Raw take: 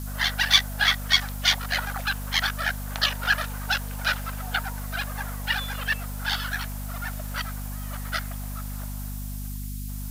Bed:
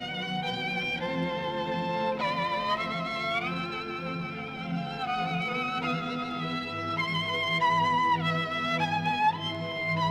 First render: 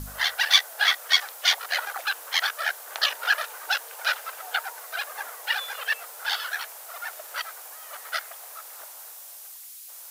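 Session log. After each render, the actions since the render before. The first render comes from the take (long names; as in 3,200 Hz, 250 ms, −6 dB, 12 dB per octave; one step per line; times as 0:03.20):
hum removal 50 Hz, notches 5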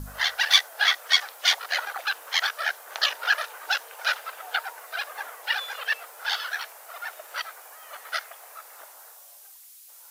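noise reduction from a noise print 6 dB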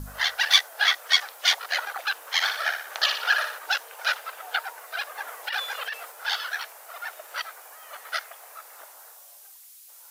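0:02.34–0:03.59: flutter between parallel walls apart 10.2 metres, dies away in 0.57 s
0:05.27–0:06.12: compressor whose output falls as the input rises −29 dBFS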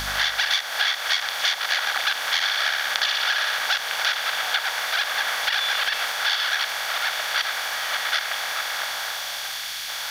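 compressor on every frequency bin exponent 0.4
downward compressor 6 to 1, threshold −19 dBFS, peak gain reduction 10 dB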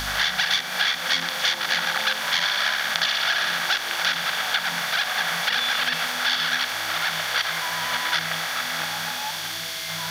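mix in bed −10 dB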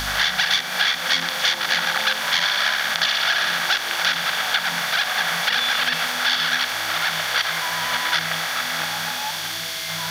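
level +2.5 dB
brickwall limiter −3 dBFS, peak gain reduction 2.5 dB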